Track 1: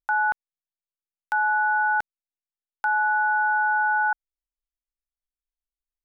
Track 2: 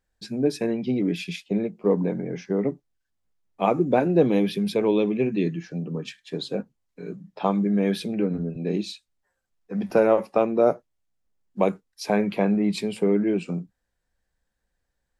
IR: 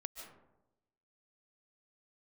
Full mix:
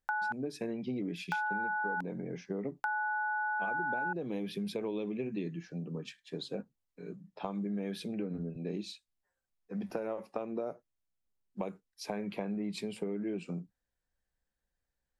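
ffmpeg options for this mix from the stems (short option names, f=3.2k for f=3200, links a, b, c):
-filter_complex "[0:a]volume=-5dB[a];[1:a]acompressor=threshold=-21dB:ratio=6,volume=-9dB[b];[a][b]amix=inputs=2:normalize=0,acompressor=threshold=-31dB:ratio=6"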